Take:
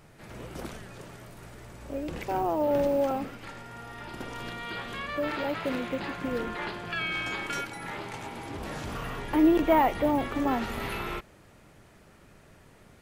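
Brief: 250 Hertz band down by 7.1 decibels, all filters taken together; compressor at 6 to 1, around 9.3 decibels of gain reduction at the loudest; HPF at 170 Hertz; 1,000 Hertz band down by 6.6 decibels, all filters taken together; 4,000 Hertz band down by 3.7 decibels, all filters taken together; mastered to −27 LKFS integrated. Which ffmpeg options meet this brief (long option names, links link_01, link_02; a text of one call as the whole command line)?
ffmpeg -i in.wav -af "highpass=170,equalizer=frequency=250:width_type=o:gain=-8.5,equalizer=frequency=1000:width_type=o:gain=-8,equalizer=frequency=4000:width_type=o:gain=-4.5,acompressor=threshold=-33dB:ratio=6,volume=12dB" out.wav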